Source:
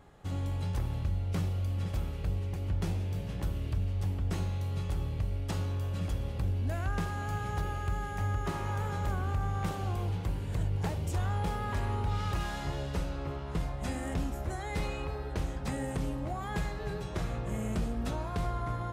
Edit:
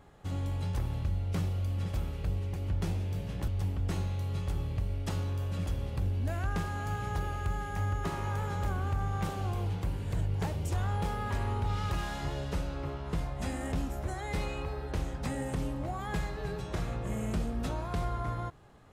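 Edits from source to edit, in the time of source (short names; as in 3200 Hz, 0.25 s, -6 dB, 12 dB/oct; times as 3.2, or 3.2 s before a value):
3.48–3.9 cut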